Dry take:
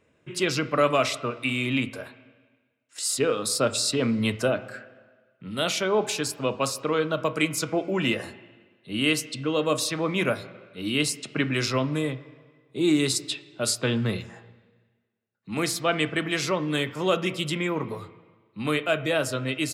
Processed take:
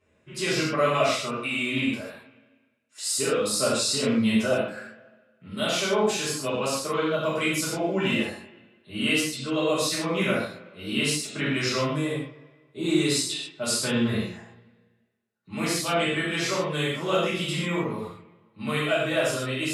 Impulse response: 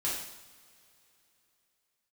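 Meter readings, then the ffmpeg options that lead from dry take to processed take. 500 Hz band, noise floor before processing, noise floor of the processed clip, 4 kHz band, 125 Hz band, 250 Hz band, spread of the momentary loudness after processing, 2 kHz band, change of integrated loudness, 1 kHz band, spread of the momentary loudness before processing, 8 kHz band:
0.0 dB, -68 dBFS, -66 dBFS, +1.0 dB, -1.0 dB, +0.5 dB, 11 LU, +0.5 dB, +0.5 dB, +0.5 dB, 11 LU, +1.0 dB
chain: -filter_complex "[1:a]atrim=start_sample=2205,atrim=end_sample=4410,asetrate=27342,aresample=44100[a];[0:a][a]afir=irnorm=-1:irlink=0,volume=-8dB"

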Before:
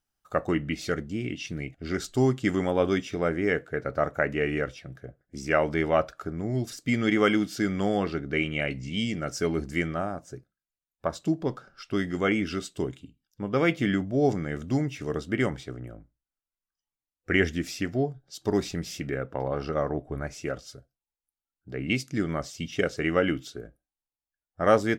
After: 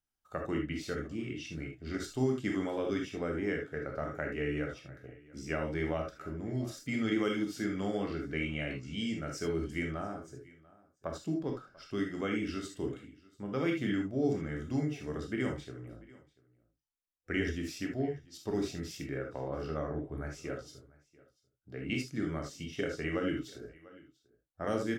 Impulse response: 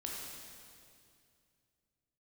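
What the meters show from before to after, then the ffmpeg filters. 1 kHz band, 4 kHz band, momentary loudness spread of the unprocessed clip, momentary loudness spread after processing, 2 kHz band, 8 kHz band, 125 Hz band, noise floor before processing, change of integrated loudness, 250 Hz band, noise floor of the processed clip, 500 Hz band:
-11.0 dB, -7.5 dB, 11 LU, 12 LU, -9.0 dB, -7.5 dB, -7.0 dB, under -85 dBFS, -7.5 dB, -6.5 dB, -78 dBFS, -8.5 dB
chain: -filter_complex "[0:a]aecho=1:1:691:0.0668[a];[1:a]atrim=start_sample=2205,afade=t=out:st=0.13:d=0.01,atrim=end_sample=6174[b];[a][b]afir=irnorm=-1:irlink=0,acrossover=split=400|3000[c][d][e];[d]acompressor=threshold=-30dB:ratio=6[f];[c][f][e]amix=inputs=3:normalize=0,volume=-5dB"

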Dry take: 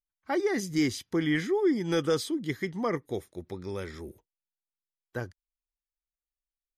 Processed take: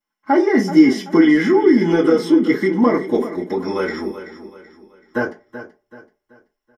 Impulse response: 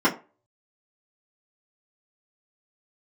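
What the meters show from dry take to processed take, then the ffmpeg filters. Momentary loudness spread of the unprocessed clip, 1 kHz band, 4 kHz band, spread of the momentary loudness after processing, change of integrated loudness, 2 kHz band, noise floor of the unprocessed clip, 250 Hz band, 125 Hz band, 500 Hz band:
15 LU, +14.5 dB, +5.5 dB, 14 LU, +13.5 dB, +12.0 dB, under -85 dBFS, +16.0 dB, +7.0 dB, +12.5 dB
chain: -filter_complex "[0:a]lowshelf=f=350:g=-9,aecho=1:1:4.7:0.32,asubboost=boost=8.5:cutoff=51,acrossover=split=680[a][b];[b]alimiter=level_in=7.5dB:limit=-24dB:level=0:latency=1:release=27,volume=-7.5dB[c];[a][c]amix=inputs=2:normalize=0,acompressor=threshold=-32dB:ratio=4,asplit=2[d][e];[e]volume=30.5dB,asoftclip=hard,volume=-30.5dB,volume=-7dB[f];[d][f]amix=inputs=2:normalize=0,aecho=1:1:381|762|1143|1524:0.237|0.0901|0.0342|0.013[g];[1:a]atrim=start_sample=2205[h];[g][h]afir=irnorm=-1:irlink=0,volume=-2dB"

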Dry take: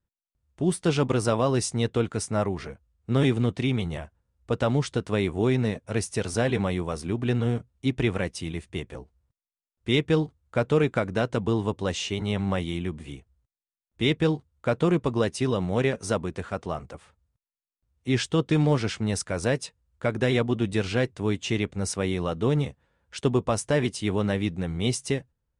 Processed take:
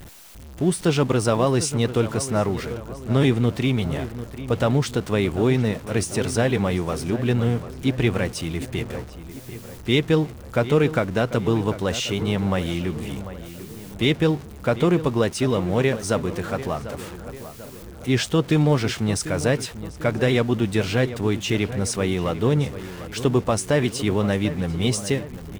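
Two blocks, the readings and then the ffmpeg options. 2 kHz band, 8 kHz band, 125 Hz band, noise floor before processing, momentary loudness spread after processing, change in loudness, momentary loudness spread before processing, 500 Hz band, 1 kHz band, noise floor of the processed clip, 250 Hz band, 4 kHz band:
+4.0 dB, +5.0 dB, +4.0 dB, under -85 dBFS, 13 LU, +4.0 dB, 10 LU, +4.0 dB, +4.0 dB, -40 dBFS, +4.0 dB, +4.0 dB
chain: -filter_complex "[0:a]aeval=exprs='val(0)+0.5*0.0133*sgn(val(0))':c=same,asplit=2[a][b];[b]adelay=744,lowpass=f=2.5k:p=1,volume=-13dB,asplit=2[c][d];[d]adelay=744,lowpass=f=2.5k:p=1,volume=0.53,asplit=2[e][f];[f]adelay=744,lowpass=f=2.5k:p=1,volume=0.53,asplit=2[g][h];[h]adelay=744,lowpass=f=2.5k:p=1,volume=0.53,asplit=2[i][j];[j]adelay=744,lowpass=f=2.5k:p=1,volume=0.53[k];[a][c][e][g][i][k]amix=inputs=6:normalize=0,volume=3dB"

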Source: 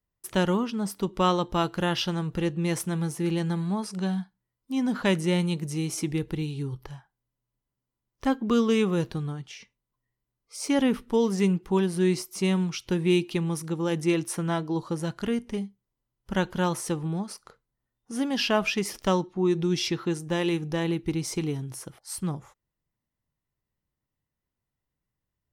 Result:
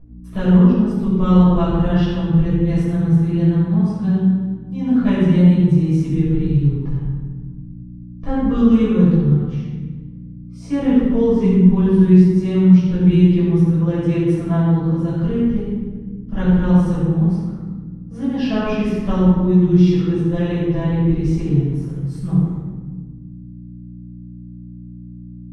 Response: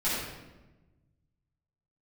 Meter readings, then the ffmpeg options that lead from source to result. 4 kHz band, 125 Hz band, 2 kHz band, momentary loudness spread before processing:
n/a, +15.0 dB, -1.0 dB, 10 LU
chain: -filter_complex "[0:a]aemphasis=mode=reproduction:type=riaa,aeval=exprs='val(0)+0.0158*(sin(2*PI*60*n/s)+sin(2*PI*2*60*n/s)/2+sin(2*PI*3*60*n/s)/3+sin(2*PI*4*60*n/s)/4+sin(2*PI*5*60*n/s)/5)':c=same[a];[1:a]atrim=start_sample=2205,asetrate=33516,aresample=44100[b];[a][b]afir=irnorm=-1:irlink=0,volume=-10.5dB"

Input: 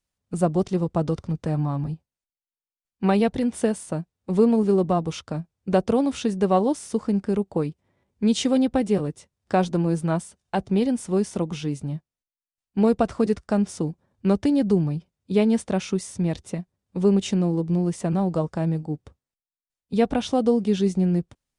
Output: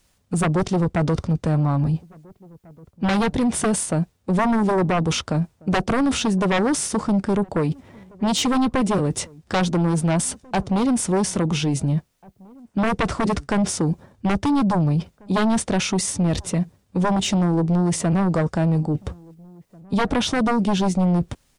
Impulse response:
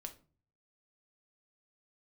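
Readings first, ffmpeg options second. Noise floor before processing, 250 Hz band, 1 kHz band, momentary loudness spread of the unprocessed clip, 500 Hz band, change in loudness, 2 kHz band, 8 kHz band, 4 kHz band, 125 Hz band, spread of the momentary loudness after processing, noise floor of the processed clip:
under -85 dBFS, +2.0 dB, +5.0 dB, 11 LU, -1.5 dB, +2.0 dB, +9.5 dB, +11.5 dB, +8.0 dB, +4.5 dB, 6 LU, -64 dBFS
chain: -filter_complex "[0:a]aeval=exprs='0.422*sin(PI/2*3.55*val(0)/0.422)':c=same,areverse,acompressor=threshold=-22dB:ratio=12,areverse,asplit=2[a][b];[b]adelay=1691,volume=-27dB,highshelf=f=4k:g=-38[c];[a][c]amix=inputs=2:normalize=0,alimiter=limit=-22dB:level=0:latency=1:release=20,volume=6.5dB"

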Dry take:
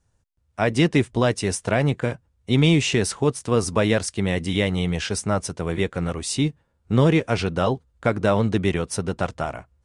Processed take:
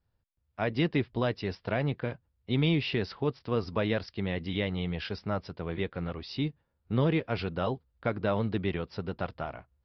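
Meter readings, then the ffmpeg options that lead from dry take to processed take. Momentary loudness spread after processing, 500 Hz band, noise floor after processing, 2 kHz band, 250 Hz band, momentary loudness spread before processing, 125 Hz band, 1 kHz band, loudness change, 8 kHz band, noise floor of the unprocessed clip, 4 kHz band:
9 LU, -9.0 dB, -77 dBFS, -9.0 dB, -9.0 dB, 9 LU, -9.0 dB, -9.0 dB, -9.0 dB, under -35 dB, -68 dBFS, -9.5 dB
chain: -af "aresample=11025,aresample=44100,volume=-9dB"

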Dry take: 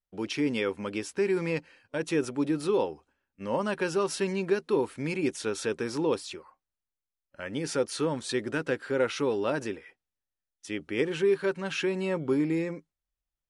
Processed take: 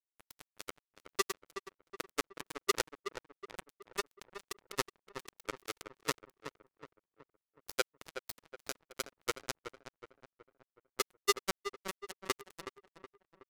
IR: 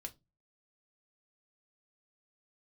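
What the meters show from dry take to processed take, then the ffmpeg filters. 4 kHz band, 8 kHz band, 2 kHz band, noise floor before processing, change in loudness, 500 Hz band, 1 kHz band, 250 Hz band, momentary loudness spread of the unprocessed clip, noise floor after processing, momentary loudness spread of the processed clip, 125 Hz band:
-2.0 dB, -0.5 dB, -7.0 dB, under -85 dBFS, -10.0 dB, -15.0 dB, -4.5 dB, -20.5 dB, 10 LU, under -85 dBFS, 23 LU, -20.0 dB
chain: -filter_complex "[0:a]highpass=f=110:p=1,adynamicequalizer=threshold=0.00562:dfrequency=1400:dqfactor=1.4:tfrequency=1400:tqfactor=1.4:attack=5:release=100:ratio=0.375:range=2.5:mode=boostabove:tftype=bell,aecho=1:1:2.1:0.98,acrossover=split=390[a][b];[b]acompressor=threshold=-48dB:ratio=2[c];[a][c]amix=inputs=2:normalize=0,asoftclip=type=hard:threshold=-25dB,aexciter=amount=12.4:drive=8:freq=4.1k,asplit=2[d][e];[e]highpass=f=720:p=1,volume=16dB,asoftclip=type=tanh:threshold=-5.5dB[f];[d][f]amix=inputs=2:normalize=0,lowpass=f=1.1k:p=1,volume=-6dB,tremolo=f=10:d=0.75,acrusher=bits=2:mix=0:aa=0.5,asplit=2[g][h];[h]adelay=371,lowpass=f=2.2k:p=1,volume=-9.5dB,asplit=2[i][j];[j]adelay=371,lowpass=f=2.2k:p=1,volume=0.48,asplit=2[k][l];[l]adelay=371,lowpass=f=2.2k:p=1,volume=0.48,asplit=2[m][n];[n]adelay=371,lowpass=f=2.2k:p=1,volume=0.48,asplit=2[o][p];[p]adelay=371,lowpass=f=2.2k:p=1,volume=0.48[q];[g][i][k][m][o][q]amix=inputs=6:normalize=0,volume=9dB"

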